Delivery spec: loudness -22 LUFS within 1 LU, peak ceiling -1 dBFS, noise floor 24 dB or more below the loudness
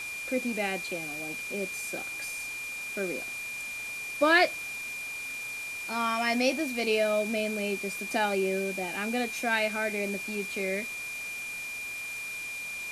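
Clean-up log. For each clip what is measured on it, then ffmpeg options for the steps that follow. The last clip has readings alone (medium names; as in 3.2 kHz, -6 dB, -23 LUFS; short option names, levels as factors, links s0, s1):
steady tone 2.4 kHz; tone level -35 dBFS; noise floor -38 dBFS; noise floor target -54 dBFS; loudness -30.0 LUFS; peak level -9.5 dBFS; loudness target -22.0 LUFS
-> -af "bandreject=f=2400:w=30"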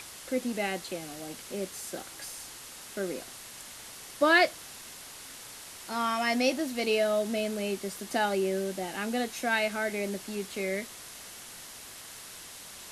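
steady tone not found; noise floor -46 dBFS; noise floor target -55 dBFS
-> -af "afftdn=nr=9:nf=-46"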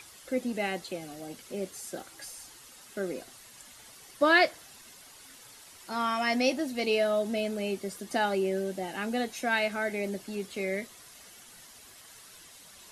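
noise floor -52 dBFS; noise floor target -54 dBFS
-> -af "afftdn=nr=6:nf=-52"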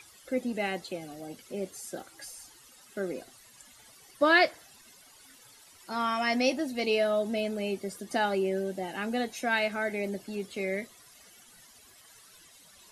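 noise floor -56 dBFS; loudness -30.0 LUFS; peak level -10.0 dBFS; loudness target -22.0 LUFS
-> -af "volume=2.51"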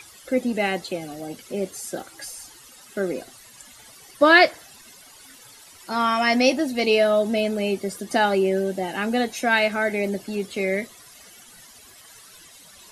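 loudness -22.0 LUFS; peak level -2.0 dBFS; noise floor -48 dBFS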